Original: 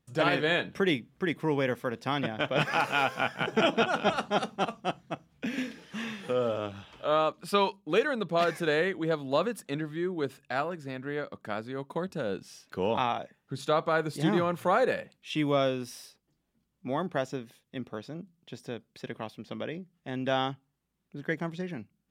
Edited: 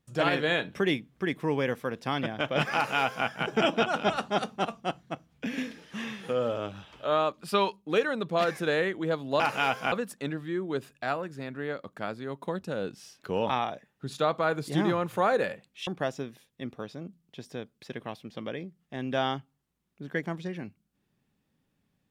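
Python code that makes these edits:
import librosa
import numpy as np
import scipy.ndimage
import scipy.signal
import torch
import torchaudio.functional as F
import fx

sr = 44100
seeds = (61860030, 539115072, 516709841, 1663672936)

y = fx.edit(x, sr, fx.duplicate(start_s=2.75, length_s=0.52, to_s=9.4),
    fx.cut(start_s=15.35, length_s=1.66), tone=tone)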